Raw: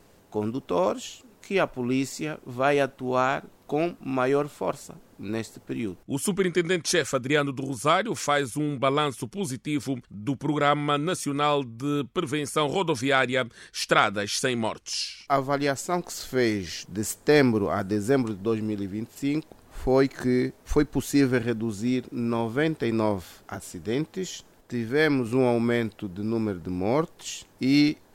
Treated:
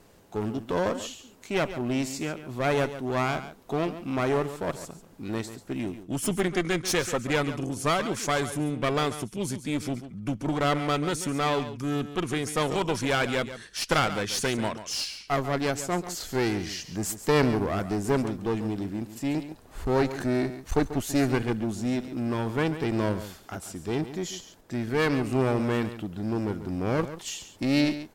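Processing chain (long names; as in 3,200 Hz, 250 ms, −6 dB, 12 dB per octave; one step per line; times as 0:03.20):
asymmetric clip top −28.5 dBFS
single-tap delay 139 ms −12.5 dB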